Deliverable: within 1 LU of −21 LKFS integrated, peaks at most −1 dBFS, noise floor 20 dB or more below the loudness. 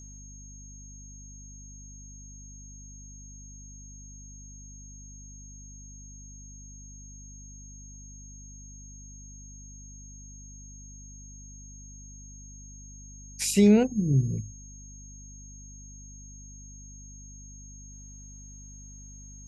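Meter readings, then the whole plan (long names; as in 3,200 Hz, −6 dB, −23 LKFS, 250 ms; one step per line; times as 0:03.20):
mains hum 50 Hz; hum harmonics up to 250 Hz; level of the hum −45 dBFS; interfering tone 6,500 Hz; level of the tone −48 dBFS; integrated loudness −23.5 LKFS; sample peak −9.5 dBFS; target loudness −21.0 LKFS
→ mains-hum notches 50/100/150/200/250 Hz
notch filter 6,500 Hz, Q 30
level +2.5 dB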